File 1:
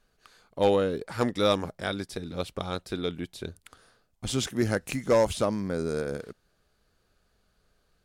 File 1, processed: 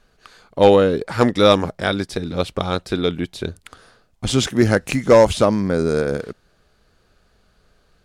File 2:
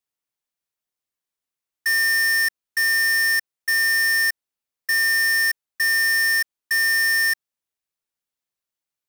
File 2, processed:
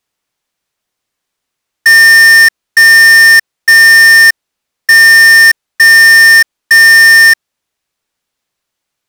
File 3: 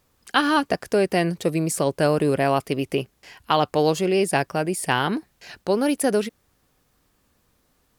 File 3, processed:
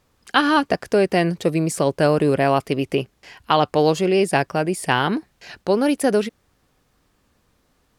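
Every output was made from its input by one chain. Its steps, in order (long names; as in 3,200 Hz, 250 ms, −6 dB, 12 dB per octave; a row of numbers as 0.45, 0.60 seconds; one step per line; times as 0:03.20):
high-shelf EQ 9,800 Hz −10.5 dB
normalise the peak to −2 dBFS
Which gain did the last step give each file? +11.0, +17.0, +3.0 decibels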